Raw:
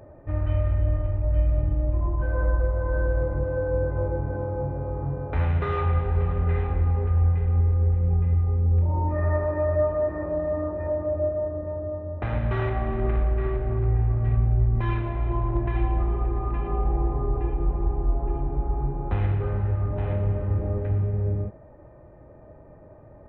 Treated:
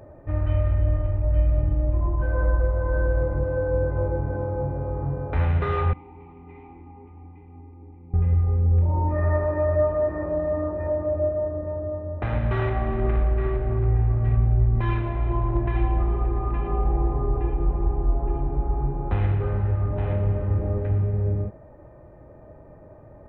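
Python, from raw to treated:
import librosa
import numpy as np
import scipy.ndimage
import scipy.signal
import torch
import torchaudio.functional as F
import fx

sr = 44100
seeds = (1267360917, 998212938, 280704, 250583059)

y = fx.vowel_filter(x, sr, vowel='u', at=(5.93, 8.14))
y = y * librosa.db_to_amplitude(1.5)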